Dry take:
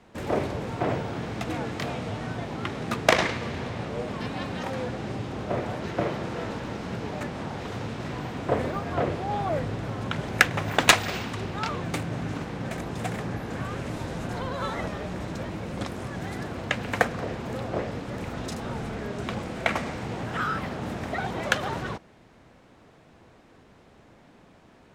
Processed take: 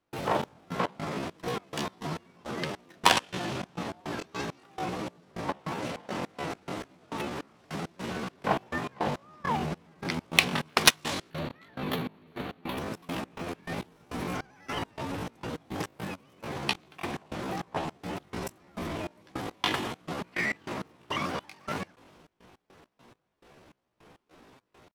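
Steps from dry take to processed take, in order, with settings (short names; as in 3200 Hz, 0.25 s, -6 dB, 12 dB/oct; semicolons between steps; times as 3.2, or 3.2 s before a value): spectral gain 11.32–12.79, 3100–7100 Hz -12 dB; step gate ".xx..x.xx.x.x.x." 103 bpm -24 dB; pitch shift +7 st; gain -1 dB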